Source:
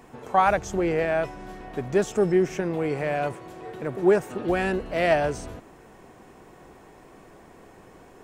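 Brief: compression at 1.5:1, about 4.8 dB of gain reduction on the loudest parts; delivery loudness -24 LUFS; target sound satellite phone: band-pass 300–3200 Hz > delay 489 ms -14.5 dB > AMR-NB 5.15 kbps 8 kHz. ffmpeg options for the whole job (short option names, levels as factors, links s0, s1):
-af "acompressor=threshold=0.0398:ratio=1.5,highpass=300,lowpass=3200,aecho=1:1:489:0.188,volume=2.11" -ar 8000 -c:a libopencore_amrnb -b:a 5150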